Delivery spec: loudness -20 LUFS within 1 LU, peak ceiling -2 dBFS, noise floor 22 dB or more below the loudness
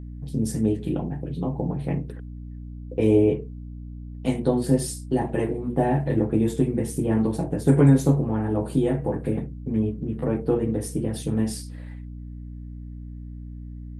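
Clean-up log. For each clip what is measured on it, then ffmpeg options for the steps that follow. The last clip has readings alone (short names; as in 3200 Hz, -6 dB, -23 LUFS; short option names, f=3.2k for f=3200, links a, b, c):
hum 60 Hz; harmonics up to 300 Hz; hum level -34 dBFS; loudness -24.0 LUFS; peak -5.5 dBFS; loudness target -20.0 LUFS
-> -af "bandreject=f=60:t=h:w=6,bandreject=f=120:t=h:w=6,bandreject=f=180:t=h:w=6,bandreject=f=240:t=h:w=6,bandreject=f=300:t=h:w=6"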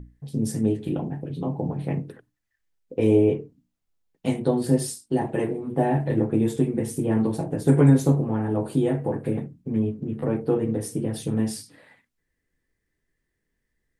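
hum none; loudness -24.5 LUFS; peak -5.5 dBFS; loudness target -20.0 LUFS
-> -af "volume=4.5dB,alimiter=limit=-2dB:level=0:latency=1"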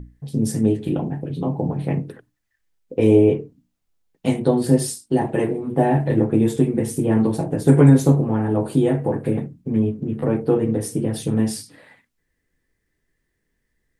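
loudness -20.0 LUFS; peak -2.0 dBFS; noise floor -74 dBFS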